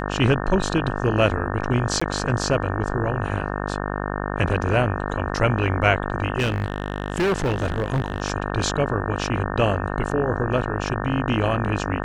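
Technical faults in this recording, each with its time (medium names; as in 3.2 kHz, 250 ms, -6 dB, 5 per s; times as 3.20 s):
buzz 50 Hz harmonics 36 -27 dBFS
2.00–2.02 s: dropout 15 ms
6.38–8.22 s: clipped -17.5 dBFS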